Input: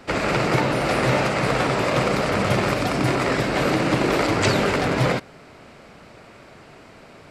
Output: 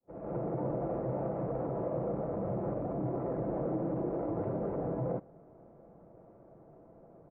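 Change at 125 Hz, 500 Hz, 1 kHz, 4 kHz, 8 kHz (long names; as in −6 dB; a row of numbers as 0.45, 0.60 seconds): −13.0 dB, −11.5 dB, −18.0 dB, below −40 dB, below −40 dB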